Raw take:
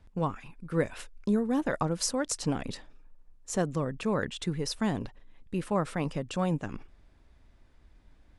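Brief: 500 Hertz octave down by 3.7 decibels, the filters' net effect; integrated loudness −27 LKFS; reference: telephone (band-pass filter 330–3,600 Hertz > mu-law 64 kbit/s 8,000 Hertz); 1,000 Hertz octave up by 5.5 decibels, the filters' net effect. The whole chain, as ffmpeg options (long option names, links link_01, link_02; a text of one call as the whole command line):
ffmpeg -i in.wav -af "highpass=330,lowpass=3600,equalizer=frequency=500:width_type=o:gain=-5.5,equalizer=frequency=1000:width_type=o:gain=8.5,volume=7.5dB" -ar 8000 -c:a pcm_mulaw out.wav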